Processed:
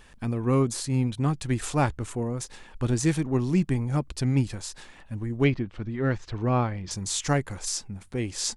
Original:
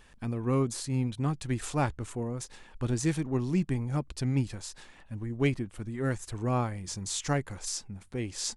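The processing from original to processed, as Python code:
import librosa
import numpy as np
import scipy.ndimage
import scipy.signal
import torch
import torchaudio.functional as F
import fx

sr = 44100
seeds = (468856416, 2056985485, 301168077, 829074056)

y = fx.lowpass(x, sr, hz=4800.0, slope=24, at=(5.44, 6.91))
y = y * librosa.db_to_amplitude(4.5)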